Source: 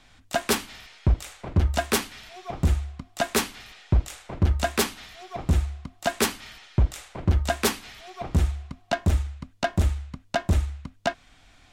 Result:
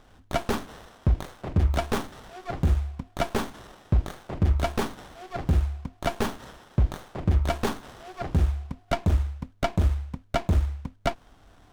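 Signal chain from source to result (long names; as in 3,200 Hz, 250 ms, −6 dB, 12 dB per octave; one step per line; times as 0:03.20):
brickwall limiter −16.5 dBFS, peak gain reduction 5 dB
windowed peak hold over 17 samples
level +2.5 dB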